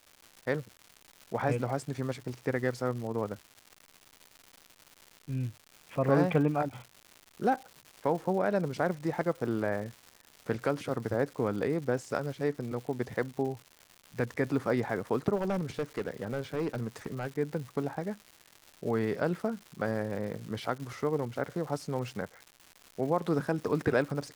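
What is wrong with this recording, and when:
surface crackle 290 per second −40 dBFS
0:15.35–0:17.27: clipping −26.5 dBFS

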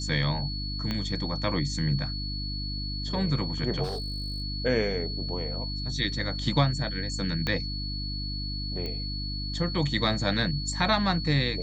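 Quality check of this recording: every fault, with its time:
mains hum 50 Hz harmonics 6 −34 dBFS
whistle 4,400 Hz −35 dBFS
0:00.91: click −17 dBFS
0:03.83–0:04.42: clipping −28.5 dBFS
0:07.47: click −15 dBFS
0:08.86: click −22 dBFS

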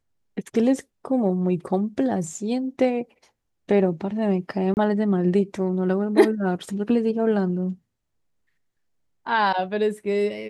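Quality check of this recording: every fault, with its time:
0:04.74–0:04.77: drop-out 29 ms

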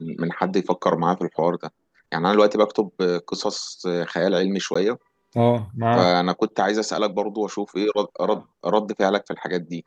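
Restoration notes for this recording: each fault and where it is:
0:04.74–0:04.75: drop-out 15 ms

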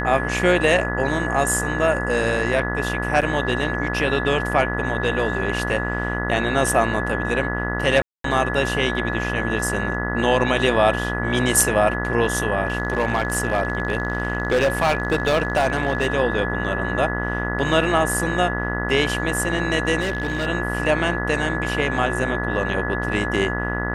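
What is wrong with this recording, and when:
mains buzz 60 Hz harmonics 33 −26 dBFS
whistle 1,700 Hz −27 dBFS
0:03.21–0:03.22: drop-out 7.4 ms
0:08.02–0:08.24: drop-out 223 ms
0:12.65–0:16.07: clipping −13.5 dBFS
0:20.00–0:20.47: clipping −19 dBFS

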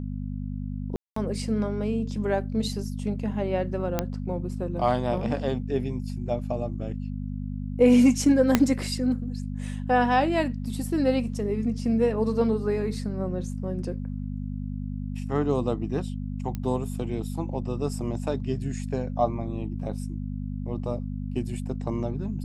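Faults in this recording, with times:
mains hum 50 Hz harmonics 5 −32 dBFS
0:00.96–0:01.16: drop-out 204 ms
0:03.99: click −10 dBFS
0:08.55: click −4 dBFS
0:16.55: click −19 dBFS

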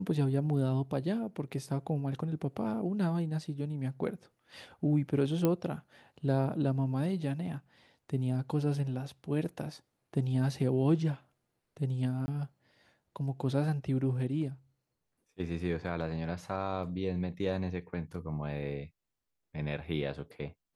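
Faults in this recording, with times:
0:05.45: click −15 dBFS
0:12.26–0:12.28: drop-out 20 ms

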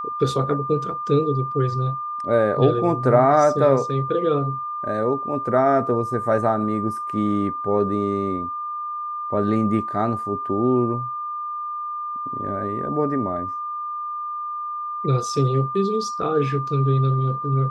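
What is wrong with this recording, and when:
whistle 1,200 Hz −26 dBFS

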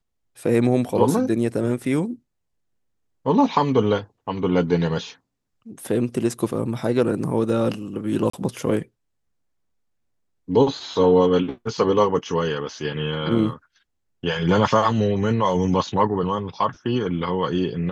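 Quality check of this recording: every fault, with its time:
0:08.30–0:08.33: drop-out 34 ms

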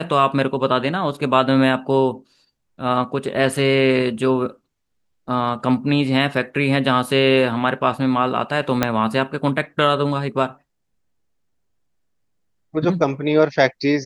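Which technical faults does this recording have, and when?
0:08.83: click −2 dBFS

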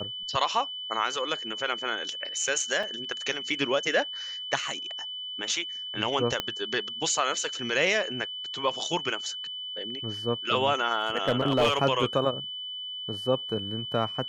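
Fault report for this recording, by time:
whistle 3,000 Hz −34 dBFS
0:02.83: drop-out 4.1 ms
0:06.40: click −12 dBFS
0:10.99–0:11.77: clipping −17 dBFS

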